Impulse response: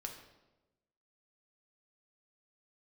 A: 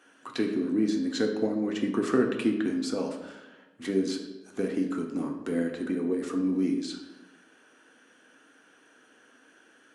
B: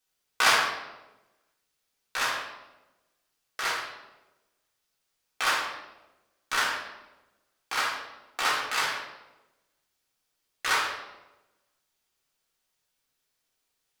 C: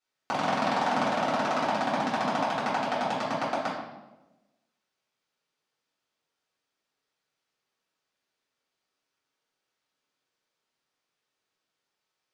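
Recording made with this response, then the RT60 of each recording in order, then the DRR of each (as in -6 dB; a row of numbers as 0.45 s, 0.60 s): A; 1.1 s, 1.1 s, 1.1 s; 1.5 dB, -4.0 dB, -10.5 dB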